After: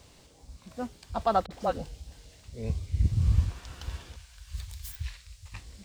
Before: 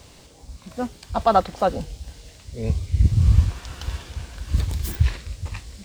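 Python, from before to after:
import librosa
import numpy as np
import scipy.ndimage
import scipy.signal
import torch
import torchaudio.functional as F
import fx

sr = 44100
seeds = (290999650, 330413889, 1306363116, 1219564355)

y = fx.dispersion(x, sr, late='highs', ms=46.0, hz=480.0, at=(1.46, 2.5))
y = fx.tone_stack(y, sr, knobs='10-0-10', at=(4.16, 5.54))
y = y * 10.0 ** (-8.0 / 20.0)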